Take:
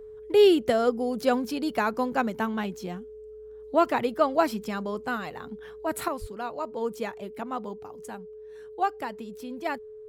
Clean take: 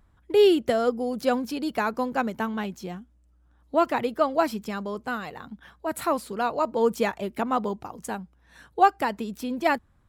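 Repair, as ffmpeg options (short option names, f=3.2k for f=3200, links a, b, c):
-filter_complex "[0:a]bandreject=f=430:w=30,asplit=3[a][b][c];[a]afade=t=out:st=6.2:d=0.02[d];[b]highpass=f=140:w=0.5412,highpass=f=140:w=1.3066,afade=t=in:st=6.2:d=0.02,afade=t=out:st=6.32:d=0.02[e];[c]afade=t=in:st=6.32:d=0.02[f];[d][e][f]amix=inputs=3:normalize=0,asetnsamples=n=441:p=0,asendcmd='6.08 volume volume 8dB',volume=0dB"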